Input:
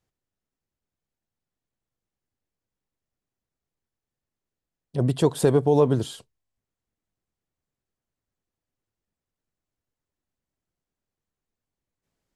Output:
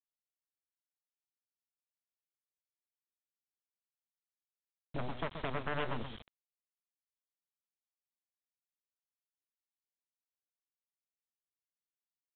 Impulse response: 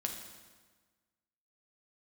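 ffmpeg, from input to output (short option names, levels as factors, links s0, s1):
-filter_complex "[0:a]aeval=exprs='if(lt(val(0),0),0.447*val(0),val(0))':c=same,equalizer=f=88:t=o:w=1.4:g=10.5,aeval=exprs='0.596*(cos(1*acos(clip(val(0)/0.596,-1,1)))-cos(1*PI/2))+0.0335*(cos(5*acos(clip(val(0)/0.596,-1,1)))-cos(5*PI/2))+0.0237*(cos(6*acos(clip(val(0)/0.596,-1,1)))-cos(6*PI/2))+0.266*(cos(8*acos(clip(val(0)/0.596,-1,1)))-cos(8*PI/2))':c=same,acompressor=threshold=0.0251:ratio=3,aecho=1:1:128:0.335,acrossover=split=580|1300[s0][s1][s2];[s0]alimiter=level_in=1.78:limit=0.0631:level=0:latency=1:release=427,volume=0.562[s3];[s3][s1][s2]amix=inputs=3:normalize=0,aeval=exprs='val(0)+0.00178*(sin(2*PI*50*n/s)+sin(2*PI*2*50*n/s)/2+sin(2*PI*3*50*n/s)/3+sin(2*PI*4*50*n/s)/4+sin(2*PI*5*50*n/s)/5)':c=same,aresample=8000,acrusher=bits=7:mix=0:aa=0.000001,aresample=44100,volume=0.794"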